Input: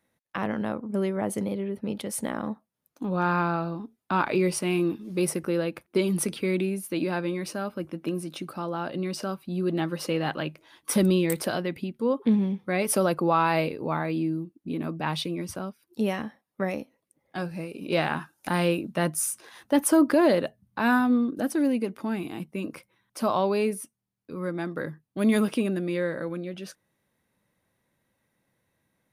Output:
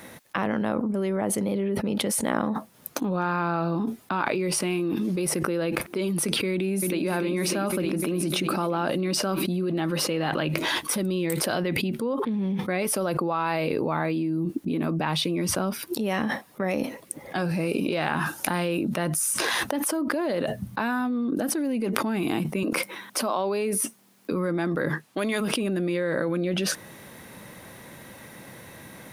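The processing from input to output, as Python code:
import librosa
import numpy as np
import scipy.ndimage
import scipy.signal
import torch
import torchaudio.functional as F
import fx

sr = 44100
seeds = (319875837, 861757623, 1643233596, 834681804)

y = fx.echo_throw(x, sr, start_s=6.52, length_s=0.53, ms=300, feedback_pct=75, wet_db=-8.5)
y = fx.highpass(y, sr, hz=200.0, slope=24, at=(22.63, 24.32))
y = fx.weighting(y, sr, curve='A', at=(24.88, 25.4), fade=0.02)
y = fx.low_shelf(y, sr, hz=72.0, db=-9.0)
y = fx.env_flatten(y, sr, amount_pct=100)
y = y * librosa.db_to_amplitude(-9.5)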